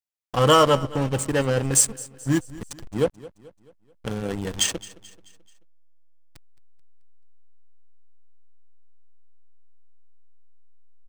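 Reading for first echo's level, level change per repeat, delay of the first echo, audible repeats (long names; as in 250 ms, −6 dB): −19.5 dB, −6.5 dB, 217 ms, 3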